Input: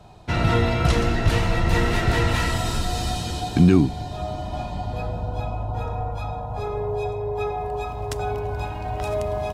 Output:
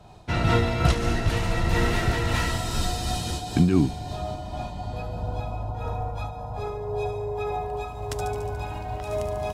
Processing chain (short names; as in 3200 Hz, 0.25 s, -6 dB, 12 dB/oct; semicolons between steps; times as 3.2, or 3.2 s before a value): thin delay 72 ms, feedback 69%, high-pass 5100 Hz, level -3.5 dB; noise-modulated level, depth 60%